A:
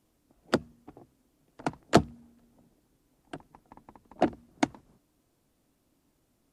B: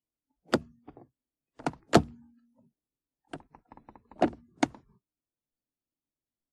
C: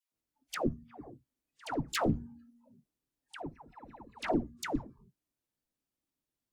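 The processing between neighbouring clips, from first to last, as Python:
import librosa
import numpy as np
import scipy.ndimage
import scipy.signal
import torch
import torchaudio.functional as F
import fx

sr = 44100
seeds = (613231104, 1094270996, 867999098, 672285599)

y1 = fx.noise_reduce_blind(x, sr, reduce_db=26)
y2 = fx.tube_stage(y1, sr, drive_db=27.0, bias=0.5)
y2 = fx.dispersion(y2, sr, late='lows', ms=126.0, hz=840.0)
y2 = y2 * librosa.db_to_amplitude(5.0)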